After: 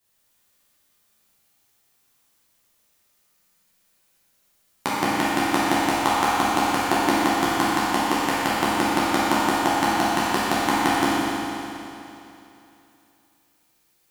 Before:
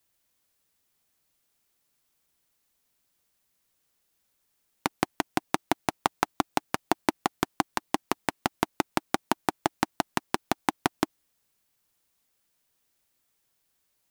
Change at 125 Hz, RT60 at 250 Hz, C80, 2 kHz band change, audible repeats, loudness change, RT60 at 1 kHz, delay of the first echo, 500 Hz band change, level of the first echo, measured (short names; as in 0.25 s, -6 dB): +7.0 dB, 2.9 s, -2.5 dB, +10.0 dB, none, +9.0 dB, 2.9 s, none, +8.0 dB, none